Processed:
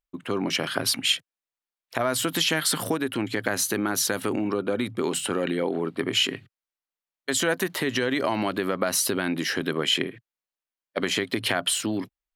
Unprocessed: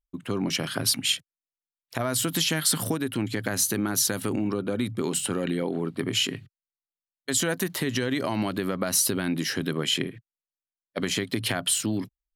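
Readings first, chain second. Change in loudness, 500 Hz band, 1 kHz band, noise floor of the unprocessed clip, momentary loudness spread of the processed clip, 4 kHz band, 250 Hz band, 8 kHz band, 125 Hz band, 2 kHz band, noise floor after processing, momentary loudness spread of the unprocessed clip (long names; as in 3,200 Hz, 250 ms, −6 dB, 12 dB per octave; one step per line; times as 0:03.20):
+0.5 dB, +3.5 dB, +4.5 dB, below −85 dBFS, 5 LU, +2.0 dB, 0.0 dB, −2.0 dB, −4.0 dB, +4.0 dB, below −85 dBFS, 7 LU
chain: bass and treble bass −10 dB, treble −7 dB
level +4.5 dB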